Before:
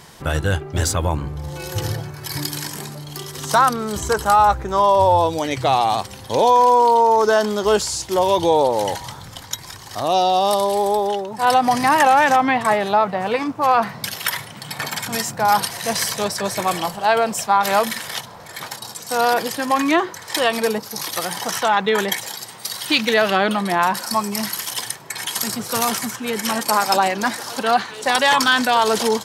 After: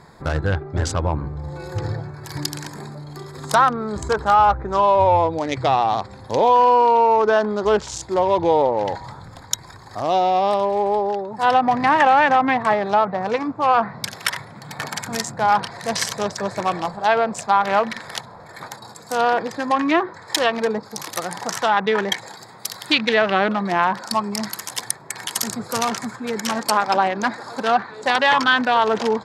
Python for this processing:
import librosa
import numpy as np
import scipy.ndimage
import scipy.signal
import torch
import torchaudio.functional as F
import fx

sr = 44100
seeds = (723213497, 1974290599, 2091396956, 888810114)

y = fx.wiener(x, sr, points=15)
y = fx.env_lowpass_down(y, sr, base_hz=2500.0, full_db=-14.0)
y = fx.high_shelf(y, sr, hz=2500.0, db=8.5)
y = y * librosa.db_to_amplitude(-1.0)